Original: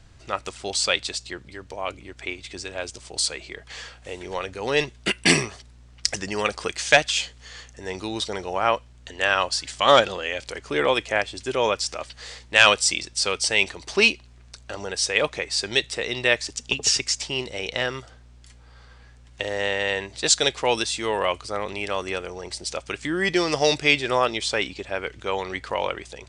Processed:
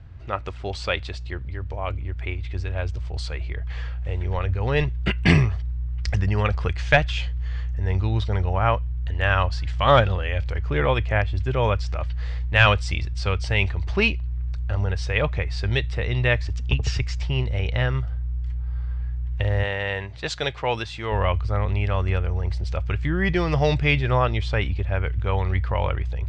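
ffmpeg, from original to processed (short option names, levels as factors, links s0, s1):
-filter_complex "[0:a]asettb=1/sr,asplit=3[s0][s1][s2];[s0]atrim=end=19.634[s3];[s1]atrim=start=19.63:end=21.12,asetpts=PTS-STARTPTS,afade=t=in:d=0.004:c=qsin,afade=t=out:st=1.486:d=0.004:c=qsin,highpass=f=320:p=1[s4];[s2]atrim=start=21.116[s5];[s3][s4]acrossfade=d=0.004:c1=hsin:c2=qsin[s6];[s6][s5]acrossfade=d=0.004:c1=qsin:c2=hsin,asubboost=boost=6.5:cutoff=110,lowpass=2400,equalizer=f=82:w=0.8:g=12.5"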